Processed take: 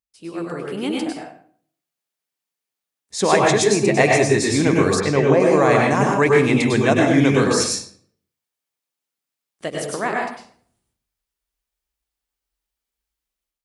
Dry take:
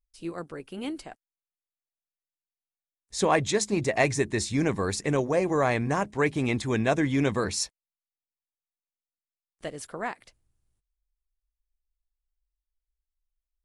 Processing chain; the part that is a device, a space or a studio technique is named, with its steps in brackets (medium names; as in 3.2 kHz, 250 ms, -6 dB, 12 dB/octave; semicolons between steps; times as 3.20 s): far laptop microphone (reverberation RT60 0.55 s, pre-delay 94 ms, DRR -1 dB; high-pass 120 Hz 12 dB/octave; level rider gain up to 8 dB); 5.00–5.40 s: low-pass 4.5 kHz 12 dB/octave